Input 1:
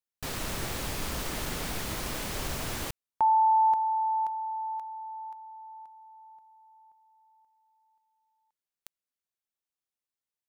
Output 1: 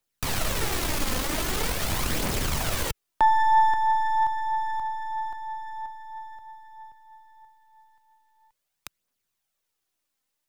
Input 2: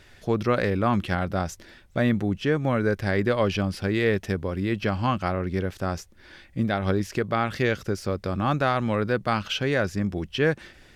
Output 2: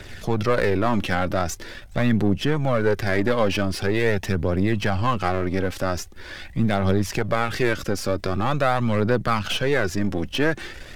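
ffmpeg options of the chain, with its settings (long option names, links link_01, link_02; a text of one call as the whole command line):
ffmpeg -i in.wav -filter_complex "[0:a]aeval=exprs='if(lt(val(0),0),0.447*val(0),val(0))':channel_layout=same,aphaser=in_gain=1:out_gain=1:delay=4:decay=0.4:speed=0.44:type=triangular,acrossover=split=110|2000[link_01][link_02][link_03];[link_03]asoftclip=type=hard:threshold=-30.5dB[link_04];[link_01][link_02][link_04]amix=inputs=3:normalize=0,apsyclip=11.5dB,acompressor=threshold=-35dB:ratio=1.5:attack=2.7:release=69:detection=peak,volume=2dB" out.wav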